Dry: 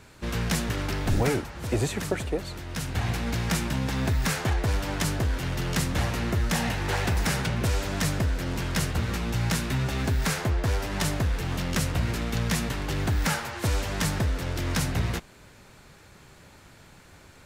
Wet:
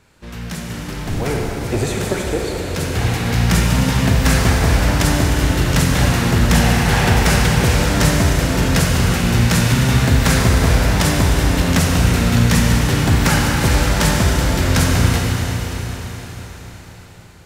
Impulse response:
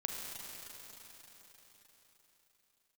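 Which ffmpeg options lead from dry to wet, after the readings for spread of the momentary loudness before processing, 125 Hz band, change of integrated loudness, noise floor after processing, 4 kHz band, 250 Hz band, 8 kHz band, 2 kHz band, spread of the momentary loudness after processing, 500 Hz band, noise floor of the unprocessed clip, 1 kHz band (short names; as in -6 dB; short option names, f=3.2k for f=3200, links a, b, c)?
4 LU, +12.0 dB, +12.0 dB, -36 dBFS, +11.5 dB, +12.5 dB, +11.5 dB, +11.5 dB, 12 LU, +10.5 dB, -52 dBFS, +11.5 dB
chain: -filter_complex "[0:a]dynaudnorm=f=300:g=9:m=14dB[a];[1:a]atrim=start_sample=2205[b];[a][b]afir=irnorm=-1:irlink=0,volume=-2.5dB"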